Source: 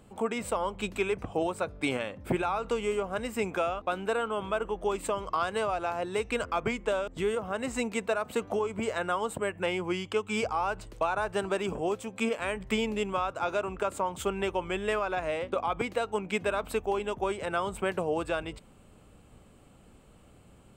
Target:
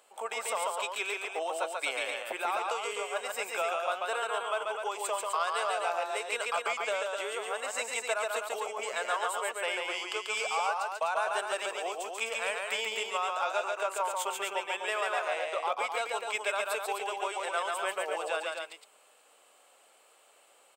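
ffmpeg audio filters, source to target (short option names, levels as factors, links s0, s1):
-filter_complex "[0:a]highpass=f=590:w=0.5412,highpass=f=590:w=1.3066,equalizer=f=1000:w=0.43:g=-5,asoftclip=type=tanh:threshold=0.1,asplit=2[s0][s1];[s1]aecho=0:1:139.9|253.6:0.708|0.501[s2];[s0][s2]amix=inputs=2:normalize=0,volume=1.5"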